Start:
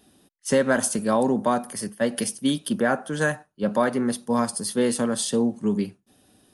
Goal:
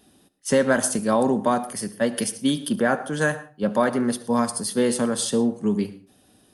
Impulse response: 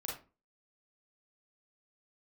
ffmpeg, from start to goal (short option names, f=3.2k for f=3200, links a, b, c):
-filter_complex "[0:a]asplit=2[a][b];[1:a]atrim=start_sample=2205,adelay=71[c];[b][c]afir=irnorm=-1:irlink=0,volume=-15dB[d];[a][d]amix=inputs=2:normalize=0,volume=1dB"